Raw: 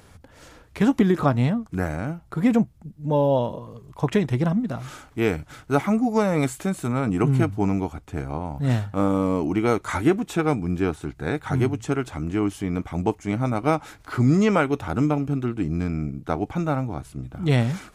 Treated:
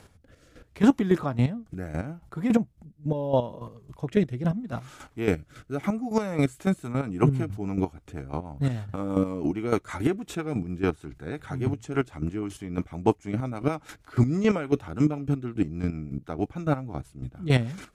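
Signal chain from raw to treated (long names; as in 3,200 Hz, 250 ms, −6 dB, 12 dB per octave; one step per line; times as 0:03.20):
rotating-speaker cabinet horn 0.75 Hz, later 6.3 Hz, at 0:06.13
square-wave tremolo 3.6 Hz, depth 65%, duty 25%
level +2 dB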